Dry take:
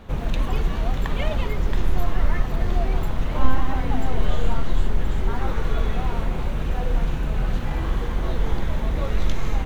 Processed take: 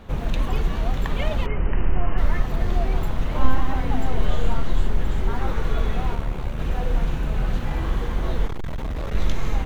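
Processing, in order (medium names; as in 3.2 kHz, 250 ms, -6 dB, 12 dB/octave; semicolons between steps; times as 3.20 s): 1.46–2.18 s: brick-wall FIR low-pass 3.1 kHz; 6.15–6.59 s: AM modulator 72 Hz, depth 50%; 8.46–9.15 s: overload inside the chain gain 24 dB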